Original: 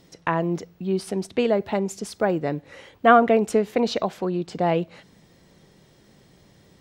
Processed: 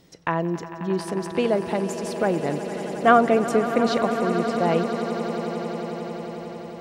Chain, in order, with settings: swelling echo 90 ms, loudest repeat 8, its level -15.5 dB; gain -1 dB

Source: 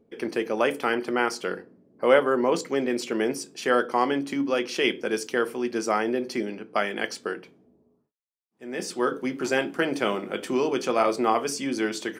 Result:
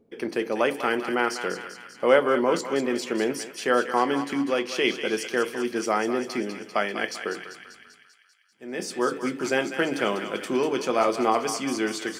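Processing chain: thinning echo 0.196 s, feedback 65%, high-pass 980 Hz, level -7.5 dB

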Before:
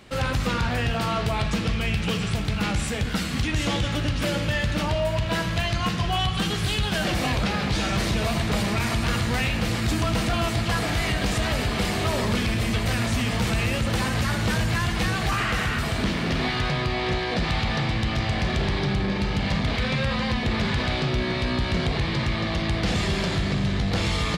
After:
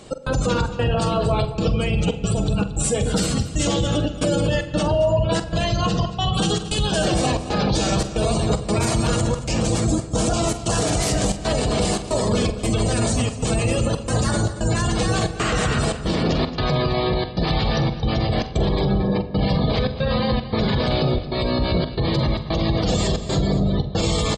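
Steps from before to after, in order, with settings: 9.17–11.31 self-modulated delay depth 0.17 ms; graphic EQ 500/2000/8000 Hz +6/-7/+10 dB; spectral gate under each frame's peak -25 dB strong; limiter -17.5 dBFS, peak gain reduction 5.5 dB; step gate "x.xxx.xxxxx.xxx" 114 bpm -60 dB; doubler 45 ms -13 dB; echo 0.226 s -15 dB; shoebox room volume 3200 m³, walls mixed, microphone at 0.56 m; gain +5 dB

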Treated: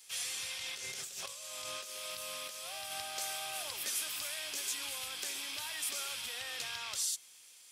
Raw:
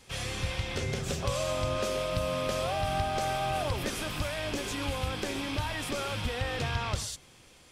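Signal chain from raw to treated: differentiator; 0.58–2.92 negative-ratio compressor -48 dBFS, ratio -1; gain +4.5 dB

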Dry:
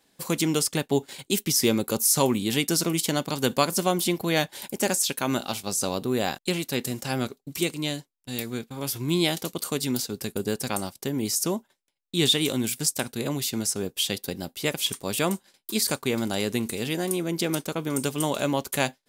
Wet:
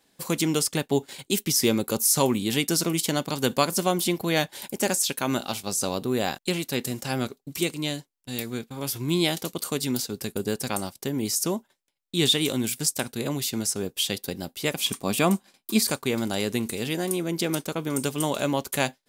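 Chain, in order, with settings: 14.75–15.9 small resonant body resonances 220/720/1100/2400 Hz, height 7 dB, ringing for 20 ms

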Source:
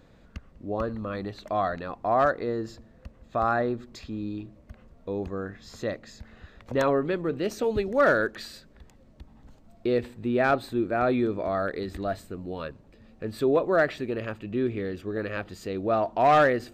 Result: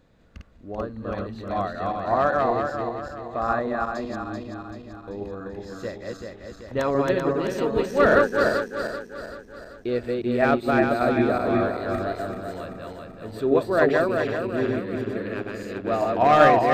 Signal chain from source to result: regenerating reverse delay 0.193 s, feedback 73%, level -1 dB; upward expander 1.5:1, over -29 dBFS; gain +3 dB

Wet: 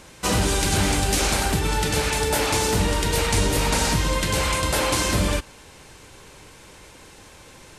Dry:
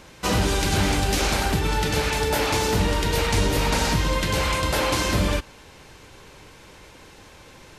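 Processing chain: bell 8900 Hz +7.5 dB 0.82 oct

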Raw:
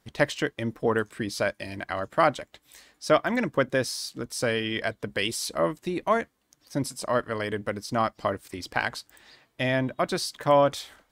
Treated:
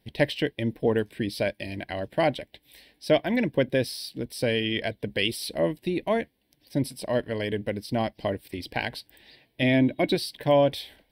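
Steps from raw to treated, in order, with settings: fixed phaser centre 3000 Hz, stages 4; 9.62–10.15 small resonant body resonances 300/2200/3900 Hz, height 11 dB; gain +3 dB

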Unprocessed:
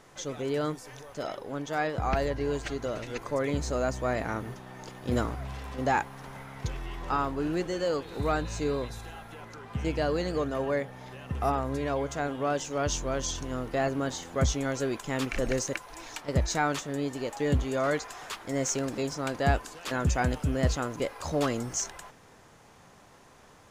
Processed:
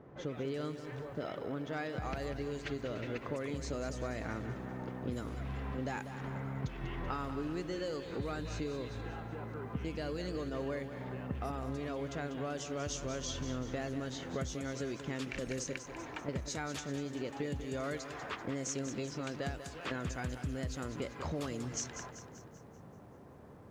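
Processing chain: low-pass opened by the level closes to 760 Hz, open at -23.5 dBFS; HPF 63 Hz; bell 860 Hz -7 dB 1.5 oct; compressor 16:1, threshold -41 dBFS, peak gain reduction 21 dB; lo-fi delay 0.193 s, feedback 55%, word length 12-bit, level -10 dB; gain +6 dB

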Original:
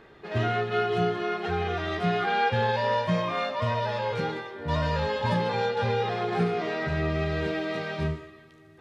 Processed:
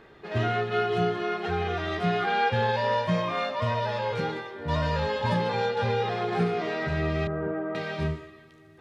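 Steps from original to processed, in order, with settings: 7.27–7.75 Chebyshev band-pass 100–1400 Hz, order 3

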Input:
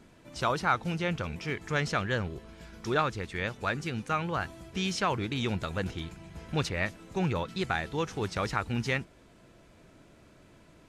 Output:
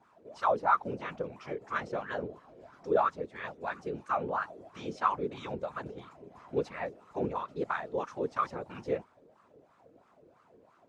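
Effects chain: whisperiser; tone controls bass +9 dB, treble +11 dB; wah 3 Hz 430–1200 Hz, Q 5.5; gain +7.5 dB

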